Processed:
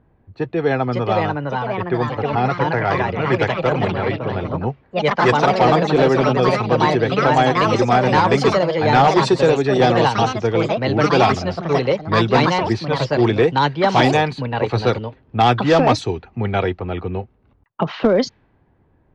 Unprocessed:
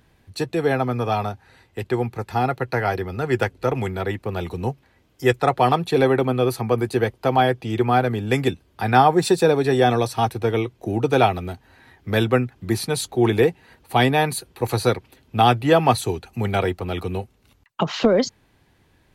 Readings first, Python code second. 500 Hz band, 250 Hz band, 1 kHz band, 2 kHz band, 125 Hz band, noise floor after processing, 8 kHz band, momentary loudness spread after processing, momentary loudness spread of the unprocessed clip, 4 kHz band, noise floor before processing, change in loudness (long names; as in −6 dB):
+4.0 dB, +3.5 dB, +4.5 dB, +5.0 dB, +3.5 dB, −58 dBFS, −3.0 dB, 9 LU, 11 LU, +4.0 dB, −60 dBFS, +3.5 dB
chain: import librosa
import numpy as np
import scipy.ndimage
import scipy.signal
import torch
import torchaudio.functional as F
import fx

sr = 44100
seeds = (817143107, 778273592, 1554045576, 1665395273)

y = fx.echo_pitch(x, sr, ms=619, semitones=3, count=3, db_per_echo=-3.0)
y = fx.env_lowpass(y, sr, base_hz=1000.0, full_db=-11.5)
y = np.clip(y, -10.0 ** (-9.0 / 20.0), 10.0 ** (-9.0 / 20.0))
y = scipy.signal.sosfilt(scipy.signal.butter(4, 6400.0, 'lowpass', fs=sr, output='sos'), y)
y = y * librosa.db_to_amplitude(2.0)